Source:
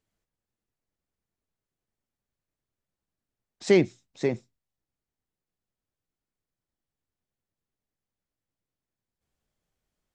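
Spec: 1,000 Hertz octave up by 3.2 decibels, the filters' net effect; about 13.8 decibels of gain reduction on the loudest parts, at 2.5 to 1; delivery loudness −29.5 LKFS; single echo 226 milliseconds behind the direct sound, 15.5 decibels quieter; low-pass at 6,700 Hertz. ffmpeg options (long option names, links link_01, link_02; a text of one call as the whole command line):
ffmpeg -i in.wav -af "lowpass=6700,equalizer=frequency=1000:width_type=o:gain=4.5,acompressor=threshold=-35dB:ratio=2.5,aecho=1:1:226:0.168,volume=8dB" out.wav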